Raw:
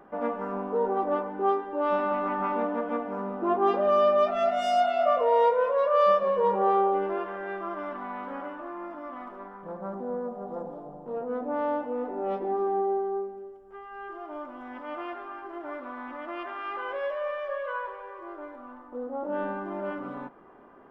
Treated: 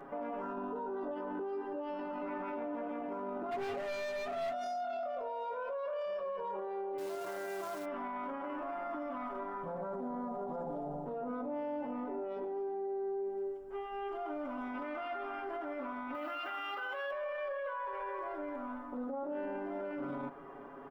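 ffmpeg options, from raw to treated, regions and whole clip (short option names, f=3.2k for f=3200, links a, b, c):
-filter_complex "[0:a]asettb=1/sr,asplit=3[a][b][c];[a]atrim=end=0.424[d];[b]atrim=start=0.42:end=2.22,asetpts=PTS-STARTPTS,afade=t=in:d=0.004:c=qsin,afade=t=out:st=1.796:d=0.004:c=qsin,asuperstop=centerf=2200:order=4:qfactor=5.1,asplit=2[e][f];[f]adelay=16,volume=-7dB[g];[e][g]amix=inputs=2:normalize=0,atrim=end_sample=79380[h];[c]atrim=start=2.216[i];[d][h]acrossfade=d=0.004:c1=hsin:c2=qsin[j];[j][i]acrossfade=d=0.004:c1=qsin:c2=hsin,asettb=1/sr,asplit=3[k][l][m];[k]atrim=end=3.514[n];[l]atrim=start=3.51:end=4.53,asetpts=PTS-STARTPTS,afade=t=in:d=0.004:c=qsin,afade=t=out:st=1.016:d=0.004:c=qsin,lowpass=f=2.4k:p=1,asoftclip=type=hard:threshold=-27.5dB[o];[m]atrim=start=4.526[p];[n][o]acrossfade=d=0.004:c1=hsin:c2=qsin[q];[q][p]acrossfade=d=0.004:c1=qsin:c2=hsin,asettb=1/sr,asplit=3[r][s][t];[r]atrim=end=6.984[u];[s]atrim=start=6.98:end=7.85,asetpts=PTS-STARTPTS,afade=t=in:d=0.004:c=qsin,afade=t=out:st=0.866:d=0.004:c=qsin,highpass=f=72:w=0.5412,highpass=f=72:w=1.3066,acrusher=bits=3:mode=log:mix=0:aa=0.000001[v];[t]atrim=start=7.846[w];[u][v]acrossfade=d=0.004:c1=hsin:c2=qsin[x];[x][w]acrossfade=d=0.004:c1=qsin:c2=hsin,asettb=1/sr,asplit=3[y][z][aa];[y]atrim=end=16.144[ab];[z]atrim=start=16.14:end=17.11,asetpts=PTS-STARTPTS,afade=t=in:d=0.004:c=qsin,afade=t=out:st=0.966:d=0.004:c=qsin,aemphasis=mode=production:type=bsi,aecho=1:1:6.5:0.75,atrim=end_sample=42777[ac];[aa]atrim=start=17.106[ad];[ab][ac]acrossfade=d=0.004:c1=hsin:c2=qsin[ae];[ae][ad]acrossfade=d=0.004:c1=qsin:c2=hsin,aecho=1:1:7.2:0.9,acompressor=threshold=-32dB:ratio=6,alimiter=level_in=9.5dB:limit=-24dB:level=0:latency=1:release=14,volume=-9.5dB,volume=1dB"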